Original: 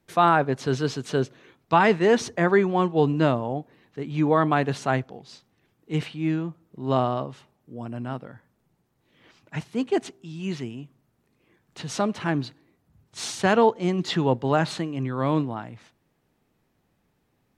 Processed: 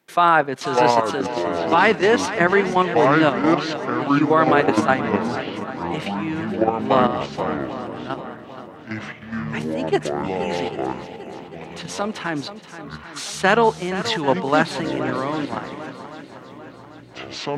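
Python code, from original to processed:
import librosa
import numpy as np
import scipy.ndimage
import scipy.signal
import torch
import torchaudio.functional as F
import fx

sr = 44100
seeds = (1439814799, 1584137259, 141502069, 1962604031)

p1 = fx.echo_pitch(x, sr, ms=511, semitones=-6, count=2, db_per_echo=-3.0)
p2 = fx.peak_eq(p1, sr, hz=1900.0, db=6.0, octaves=2.8)
p3 = fx.level_steps(p2, sr, step_db=9)
p4 = scipy.signal.sosfilt(scipy.signal.butter(2, 190.0, 'highpass', fs=sr, output='sos'), p3)
p5 = fx.high_shelf(p4, sr, hz=9400.0, db=7.0)
p6 = p5 + fx.echo_swing(p5, sr, ms=793, ratio=1.5, feedback_pct=43, wet_db=-12.5, dry=0)
y = F.gain(torch.from_numpy(p6), 4.0).numpy()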